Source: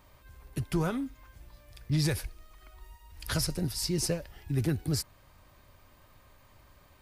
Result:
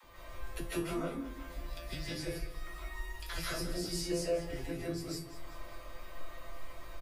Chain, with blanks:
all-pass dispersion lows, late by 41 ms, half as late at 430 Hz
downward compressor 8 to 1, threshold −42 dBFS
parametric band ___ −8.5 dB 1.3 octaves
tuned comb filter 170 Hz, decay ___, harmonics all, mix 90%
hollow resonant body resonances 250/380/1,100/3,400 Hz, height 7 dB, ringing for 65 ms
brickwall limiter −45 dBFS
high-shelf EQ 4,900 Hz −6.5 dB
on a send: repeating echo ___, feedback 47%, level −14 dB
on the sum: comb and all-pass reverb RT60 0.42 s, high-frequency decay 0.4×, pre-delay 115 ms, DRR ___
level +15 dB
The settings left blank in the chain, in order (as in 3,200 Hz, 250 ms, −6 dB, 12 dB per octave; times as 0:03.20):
180 Hz, 0.28 s, 193 ms, −6.5 dB